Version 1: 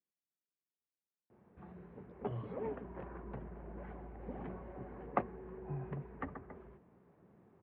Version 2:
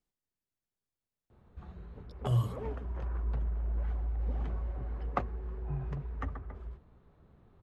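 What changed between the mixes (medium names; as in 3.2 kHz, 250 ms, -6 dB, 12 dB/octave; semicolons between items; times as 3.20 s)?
speech +9.0 dB; master: remove cabinet simulation 170–2400 Hz, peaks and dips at 190 Hz +4 dB, 360 Hz +3 dB, 1.3 kHz -5 dB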